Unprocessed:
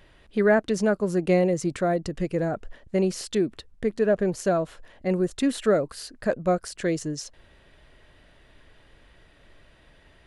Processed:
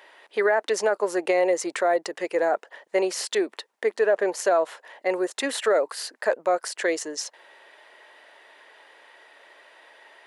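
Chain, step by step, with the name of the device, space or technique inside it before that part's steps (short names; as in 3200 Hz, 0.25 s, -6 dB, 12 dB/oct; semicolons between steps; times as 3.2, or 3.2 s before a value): laptop speaker (HPF 420 Hz 24 dB/oct; bell 900 Hz +8 dB 0.43 oct; bell 1900 Hz +5 dB 0.4 oct; limiter -17.5 dBFS, peak gain reduction 9.5 dB); gain +5 dB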